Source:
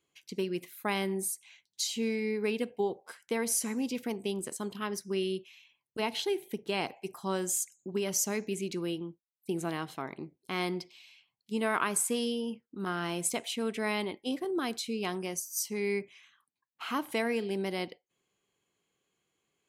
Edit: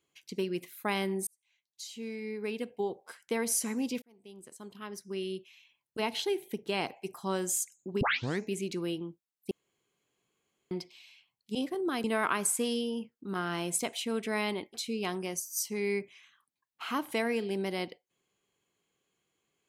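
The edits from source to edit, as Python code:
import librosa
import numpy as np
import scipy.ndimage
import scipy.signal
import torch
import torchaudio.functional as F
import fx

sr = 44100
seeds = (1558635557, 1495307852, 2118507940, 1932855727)

y = fx.edit(x, sr, fx.fade_in_span(start_s=1.27, length_s=2.05),
    fx.fade_in_span(start_s=4.02, length_s=1.98),
    fx.tape_start(start_s=8.01, length_s=0.4),
    fx.room_tone_fill(start_s=9.51, length_s=1.2),
    fx.move(start_s=14.25, length_s=0.49, to_s=11.55), tone=tone)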